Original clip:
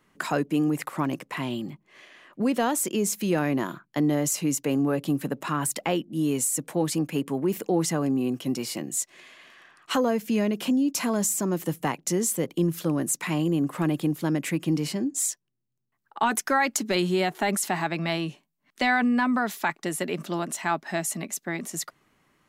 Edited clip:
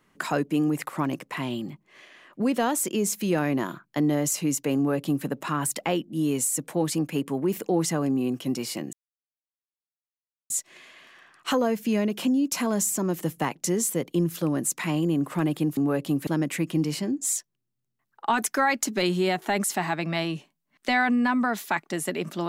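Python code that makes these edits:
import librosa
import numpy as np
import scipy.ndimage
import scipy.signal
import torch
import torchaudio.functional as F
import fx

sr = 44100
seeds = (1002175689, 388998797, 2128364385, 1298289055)

y = fx.edit(x, sr, fx.duplicate(start_s=4.76, length_s=0.5, to_s=14.2),
    fx.insert_silence(at_s=8.93, length_s=1.57), tone=tone)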